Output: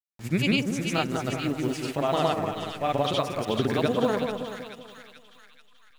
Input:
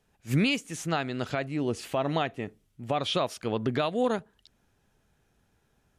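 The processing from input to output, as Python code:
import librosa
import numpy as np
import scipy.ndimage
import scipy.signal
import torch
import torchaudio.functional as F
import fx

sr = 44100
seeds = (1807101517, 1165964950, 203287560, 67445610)

y = fx.delta_hold(x, sr, step_db=-46.0)
y = fx.granulator(y, sr, seeds[0], grain_ms=100.0, per_s=20.0, spray_ms=100.0, spread_st=0)
y = fx.echo_split(y, sr, split_hz=1400.0, low_ms=189, high_ms=434, feedback_pct=52, wet_db=-5)
y = F.gain(torch.from_numpy(y), 2.5).numpy()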